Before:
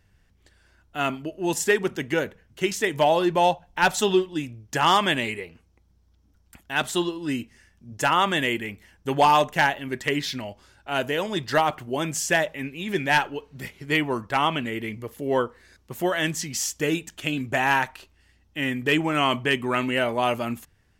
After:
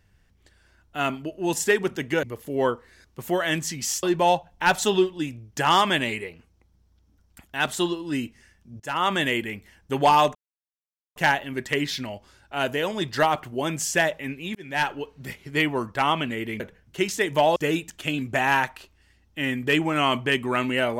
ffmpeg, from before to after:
-filter_complex "[0:a]asplit=8[a][b][c][d][e][f][g][h];[a]atrim=end=2.232[i];[b]atrim=start=14.948:end=16.752[j];[c]atrim=start=3.188:end=7.96,asetpts=PTS-STARTPTS,afade=t=out:st=4.768:d=0.004:c=hsin:silence=0.0944061[k];[d]atrim=start=7.96:end=9.51,asetpts=PTS-STARTPTS,afade=t=in:d=0.33:silence=0.0944061,afade=t=out:st=1.546:d=0.004:c=hsin,apad=pad_dur=0.81[l];[e]atrim=start=9.51:end=12.9,asetpts=PTS-STARTPTS,afade=t=in:d=0.004:c=hsin,afade=t=out:st=3.386:d=0.004:c=hsin[m];[f]atrim=start=12.9:end=14.952,asetpts=PTS-STARTPTS,afade=t=in:d=0.4[n];[g]atrim=start=2.228:end=3.192[o];[h]atrim=start=16.748[p];[i][j]acrossfade=d=0.004:c1=hsin:c2=hsin[q];[k][l][m][n]concat=n=4:v=0:a=1[r];[q][r]acrossfade=d=0.004:c1=hsin:c2=hsin[s];[s][o]acrossfade=d=0.004:c1=hsin:c2=hsin[t];[t][p]acrossfade=d=0.004:c1=hsin:c2=hsin"

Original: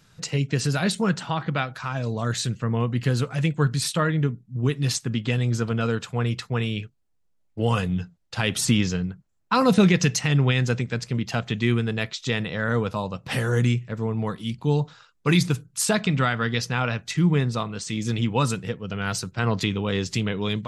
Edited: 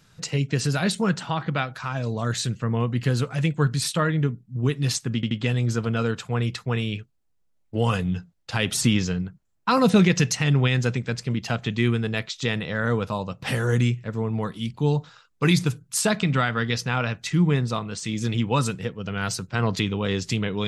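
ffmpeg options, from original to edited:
-filter_complex "[0:a]asplit=3[a][b][c];[a]atrim=end=5.232[d];[b]atrim=start=5.148:end=5.232[e];[c]atrim=start=5.148[f];[d][e]acrossfade=d=0.004:c1=hsin:c2=hsin[g];[g][f]acrossfade=d=0.004:c1=hsin:c2=hsin"

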